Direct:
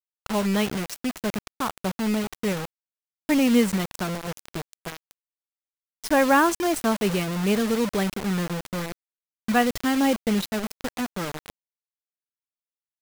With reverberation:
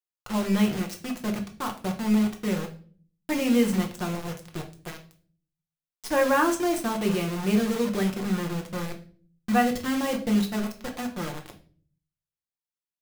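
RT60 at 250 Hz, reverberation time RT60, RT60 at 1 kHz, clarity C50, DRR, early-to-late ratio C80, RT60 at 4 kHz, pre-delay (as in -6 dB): 0.75 s, 0.45 s, 0.35 s, 11.0 dB, 1.5 dB, 16.5 dB, 0.40 s, 6 ms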